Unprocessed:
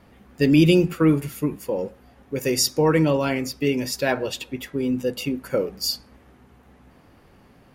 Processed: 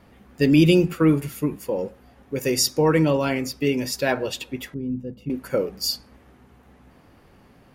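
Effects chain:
0:04.74–0:05.30: drawn EQ curve 190 Hz 0 dB, 450 Hz −12 dB, 7,700 Hz −29 dB

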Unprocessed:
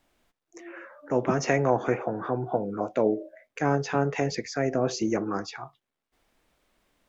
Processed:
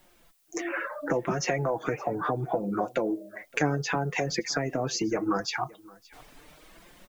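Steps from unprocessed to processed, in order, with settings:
reverb reduction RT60 0.71 s
automatic gain control gain up to 10.5 dB
in parallel at +3 dB: brickwall limiter −11.5 dBFS, peak gain reduction 9.5 dB
on the sum: downward compressor 4 to 1, threshold −28 dBFS, peak gain reduction 18 dB
flanger 0.71 Hz, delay 5.4 ms, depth 1.6 ms, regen +34%
background noise blue −72 dBFS
on a send: single-tap delay 569 ms −23.5 dB
on the sum: level +4 dB

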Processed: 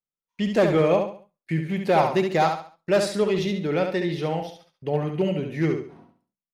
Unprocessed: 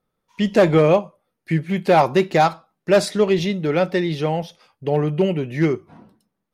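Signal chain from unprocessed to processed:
noise gate −46 dBFS, range −22 dB
on a send: repeating echo 69 ms, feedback 33%, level −6 dB
on the sum: level −5.5 dB

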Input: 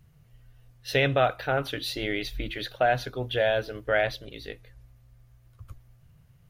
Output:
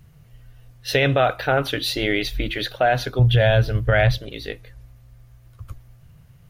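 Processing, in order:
0:03.19–0:04.18: low shelf with overshoot 200 Hz +13 dB, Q 1.5
brickwall limiter −16 dBFS, peak gain reduction 5 dB
level +8 dB

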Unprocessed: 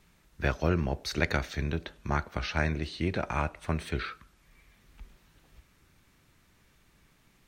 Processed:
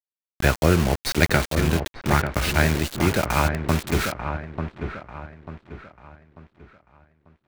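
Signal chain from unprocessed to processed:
stylus tracing distortion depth 0.088 ms
Bessel low-pass filter 8,600 Hz
bit reduction 6 bits
delay with a low-pass on its return 892 ms, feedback 36%, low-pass 1,800 Hz, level −7 dB
level +8.5 dB

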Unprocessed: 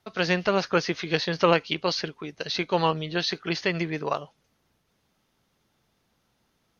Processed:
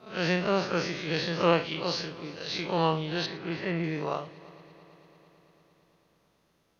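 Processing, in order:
spectrum smeared in time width 98 ms
0:03.26–0:03.84: low-pass filter 2,300 Hz 12 dB per octave
on a send: echo machine with several playback heads 112 ms, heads first and third, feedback 73%, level −22.5 dB

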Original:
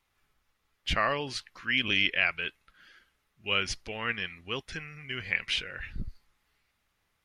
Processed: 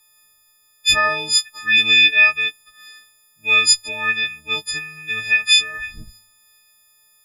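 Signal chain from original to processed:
every partial snapped to a pitch grid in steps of 6 semitones
high-shelf EQ 2,900 Hz +11.5 dB
hum removal 100.4 Hz, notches 2
level +1 dB

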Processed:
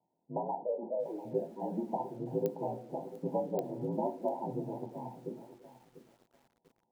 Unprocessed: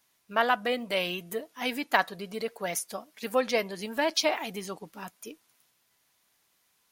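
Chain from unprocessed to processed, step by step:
0:00.52–0:01.25: three sine waves on the formant tracks
downward compressor 4 to 1, threshold −30 dBFS, peak gain reduction 11 dB
ring modulation 56 Hz
linear-phase brick-wall low-pass 1,000 Hz
echo through a band-pass that steps 111 ms, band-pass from 210 Hz, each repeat 0.7 octaves, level −12 dB
convolution reverb RT60 0.35 s, pre-delay 3 ms, DRR 2.5 dB
digital clicks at 0:02.46/0:03.59, −22 dBFS
feedback echo at a low word length 694 ms, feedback 35%, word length 9 bits, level −14.5 dB

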